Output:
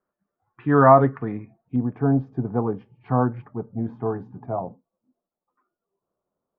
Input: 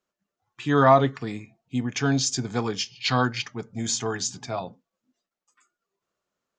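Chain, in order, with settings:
low-pass filter 1,600 Hz 24 dB per octave, from 0:01.76 1,000 Hz
level +3.5 dB

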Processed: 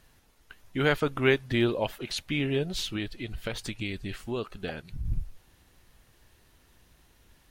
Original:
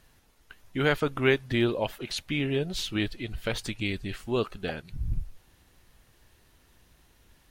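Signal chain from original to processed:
0:02.89–0:05.05: downward compressor 2.5 to 1, threshold −31 dBFS, peak gain reduction 6.5 dB

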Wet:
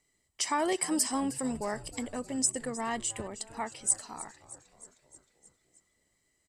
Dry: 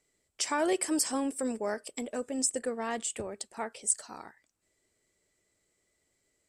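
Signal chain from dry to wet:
comb filter 1 ms, depth 43%
echo with shifted repeats 311 ms, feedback 63%, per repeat −120 Hz, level −17 dB

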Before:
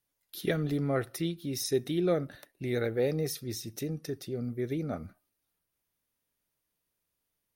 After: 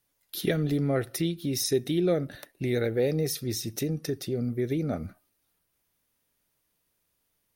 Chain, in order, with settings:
dynamic equaliser 1,100 Hz, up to −6 dB, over −50 dBFS, Q 1.5
in parallel at +2 dB: downward compressor, threshold −34 dBFS, peak gain reduction 10.5 dB

